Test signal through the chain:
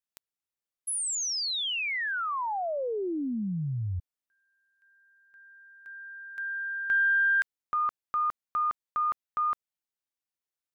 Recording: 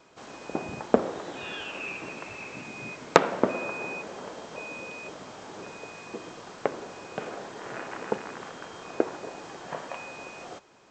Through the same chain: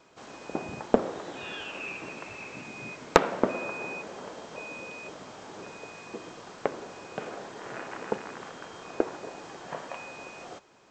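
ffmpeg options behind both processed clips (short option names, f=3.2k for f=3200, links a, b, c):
-af "aeval=exprs='0.891*(cos(1*acos(clip(val(0)/0.891,-1,1)))-cos(1*PI/2))+0.112*(cos(2*acos(clip(val(0)/0.891,-1,1)))-cos(2*PI/2))+0.00562*(cos(4*acos(clip(val(0)/0.891,-1,1)))-cos(4*PI/2))':c=same,volume=-1.5dB"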